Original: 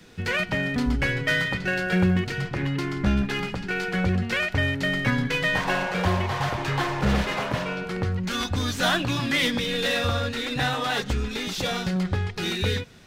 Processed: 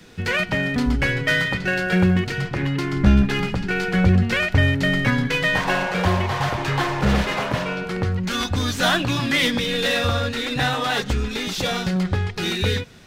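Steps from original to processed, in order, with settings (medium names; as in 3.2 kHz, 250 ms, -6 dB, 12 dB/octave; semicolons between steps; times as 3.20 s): 2.92–5.06 s: bass shelf 230 Hz +6 dB; trim +3.5 dB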